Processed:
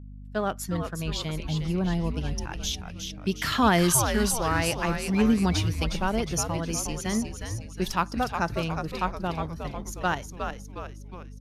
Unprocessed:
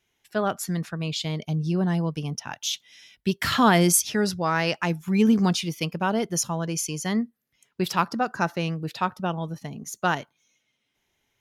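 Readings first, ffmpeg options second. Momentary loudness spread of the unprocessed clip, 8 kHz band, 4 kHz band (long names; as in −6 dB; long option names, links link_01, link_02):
11 LU, −1.5 dB, −2.0 dB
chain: -filter_complex "[0:a]agate=range=-20dB:threshold=-47dB:ratio=16:detection=peak,asplit=2[link_01][link_02];[link_02]aeval=exprs='sgn(val(0))*max(abs(val(0))-0.0106,0)':channel_layout=same,volume=-6.5dB[link_03];[link_01][link_03]amix=inputs=2:normalize=0,aresample=32000,aresample=44100,asplit=7[link_04][link_05][link_06][link_07][link_08][link_09][link_10];[link_05]adelay=361,afreqshift=-120,volume=-6dB[link_11];[link_06]adelay=722,afreqshift=-240,volume=-11.8dB[link_12];[link_07]adelay=1083,afreqshift=-360,volume=-17.7dB[link_13];[link_08]adelay=1444,afreqshift=-480,volume=-23.5dB[link_14];[link_09]adelay=1805,afreqshift=-600,volume=-29.4dB[link_15];[link_10]adelay=2166,afreqshift=-720,volume=-35.2dB[link_16];[link_04][link_11][link_12][link_13][link_14][link_15][link_16]amix=inputs=7:normalize=0,aeval=exprs='val(0)+0.0178*(sin(2*PI*50*n/s)+sin(2*PI*2*50*n/s)/2+sin(2*PI*3*50*n/s)/3+sin(2*PI*4*50*n/s)/4+sin(2*PI*5*50*n/s)/5)':channel_layout=same,volume=-6dB"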